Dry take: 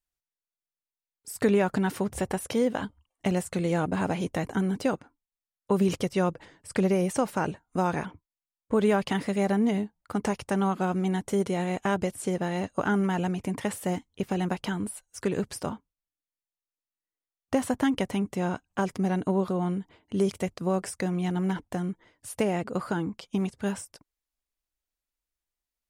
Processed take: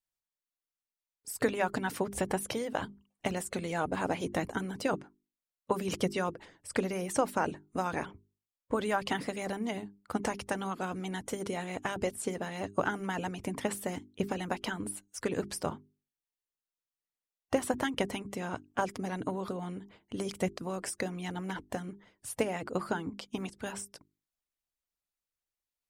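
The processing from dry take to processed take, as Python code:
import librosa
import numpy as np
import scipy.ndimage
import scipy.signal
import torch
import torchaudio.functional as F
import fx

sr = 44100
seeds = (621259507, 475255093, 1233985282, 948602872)

y = fx.hpss(x, sr, part='harmonic', gain_db=-11)
y = fx.hum_notches(y, sr, base_hz=50, count=8)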